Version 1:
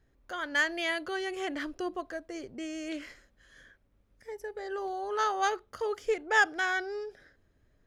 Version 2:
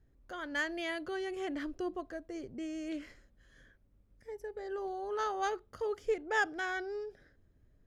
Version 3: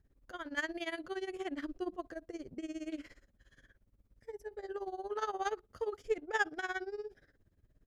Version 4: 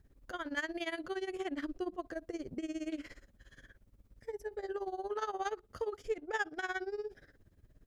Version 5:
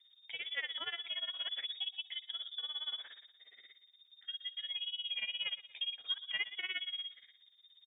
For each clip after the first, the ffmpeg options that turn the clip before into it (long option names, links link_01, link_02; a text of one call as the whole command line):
ffmpeg -i in.wav -af "lowshelf=frequency=440:gain=10.5,volume=-8dB" out.wav
ffmpeg -i in.wav -af "tremolo=f=17:d=0.88,volume=1.5dB" out.wav
ffmpeg -i in.wav -af "acompressor=threshold=-44dB:ratio=2,volume=6dB" out.wav
ffmpeg -i in.wav -af "lowpass=frequency=3100:width_type=q:width=0.5098,lowpass=frequency=3100:width_type=q:width=0.6013,lowpass=frequency=3100:width_type=q:width=0.9,lowpass=frequency=3100:width_type=q:width=2.563,afreqshift=-3700,aecho=1:1:119|238|357|476:0.158|0.065|0.0266|0.0109,volume=-2dB" out.wav